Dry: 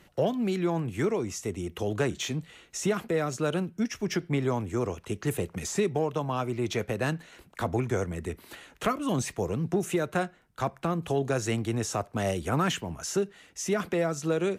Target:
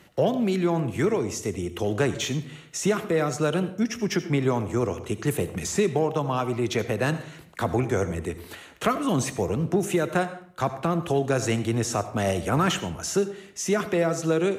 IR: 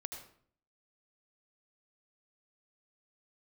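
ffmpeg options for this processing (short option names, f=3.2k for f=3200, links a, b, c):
-filter_complex "[0:a]highpass=63,asplit=2[a][b];[1:a]atrim=start_sample=2205[c];[b][c]afir=irnorm=-1:irlink=0,volume=-1.5dB[d];[a][d]amix=inputs=2:normalize=0"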